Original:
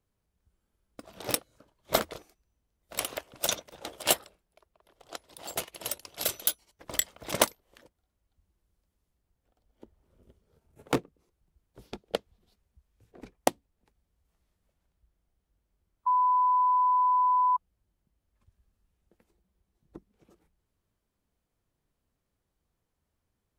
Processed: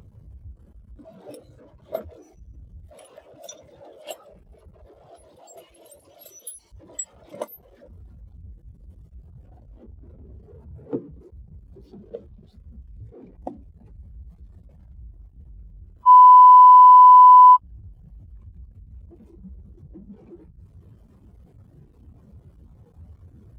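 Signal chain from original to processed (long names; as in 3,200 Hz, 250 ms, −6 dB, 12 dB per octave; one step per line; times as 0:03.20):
converter with a step at zero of −23 dBFS
high-pass filter 51 Hz
every bin expanded away from the loudest bin 2.5 to 1
level −2.5 dB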